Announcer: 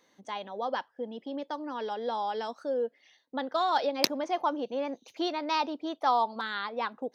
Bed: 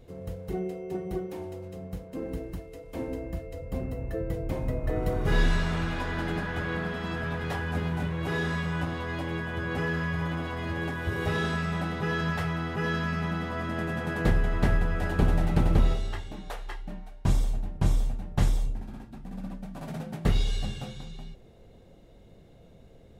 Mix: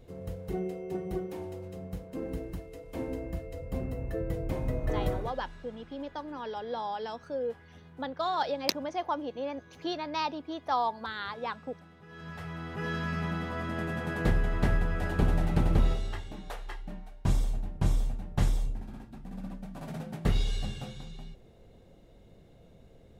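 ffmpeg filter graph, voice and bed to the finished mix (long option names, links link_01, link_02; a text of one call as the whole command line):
ffmpeg -i stem1.wav -i stem2.wav -filter_complex "[0:a]adelay=4650,volume=-3dB[link_01];[1:a]volume=19.5dB,afade=type=out:start_time=5.09:duration=0.23:silence=0.0794328,afade=type=in:start_time=12.08:duration=1.1:silence=0.0891251[link_02];[link_01][link_02]amix=inputs=2:normalize=0" out.wav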